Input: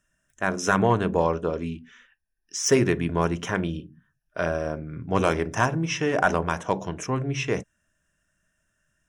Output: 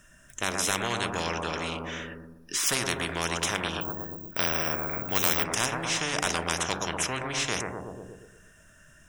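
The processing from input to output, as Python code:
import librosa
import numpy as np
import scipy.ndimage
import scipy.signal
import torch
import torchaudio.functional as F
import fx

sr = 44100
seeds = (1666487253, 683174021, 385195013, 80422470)

y = fx.echo_bbd(x, sr, ms=119, stages=1024, feedback_pct=43, wet_db=-7.0)
y = fx.resample_bad(y, sr, factor=2, down='filtered', up='zero_stuff', at=(3.81, 5.44))
y = fx.spectral_comp(y, sr, ratio=4.0)
y = y * librosa.db_to_amplitude(-1.5)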